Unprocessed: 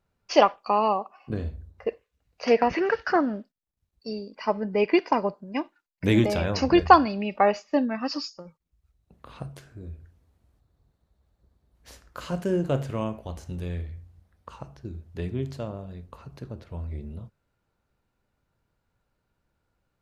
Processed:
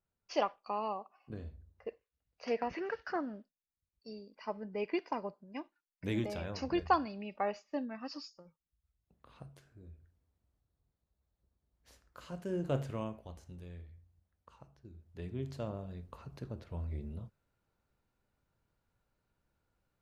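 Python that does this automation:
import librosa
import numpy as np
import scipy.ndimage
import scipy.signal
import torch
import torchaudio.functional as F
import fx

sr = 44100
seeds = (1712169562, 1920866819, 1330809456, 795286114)

y = fx.gain(x, sr, db=fx.line((12.39, -14.0), (12.77, -7.0), (13.66, -16.5), (14.9, -16.5), (15.69, -5.0)))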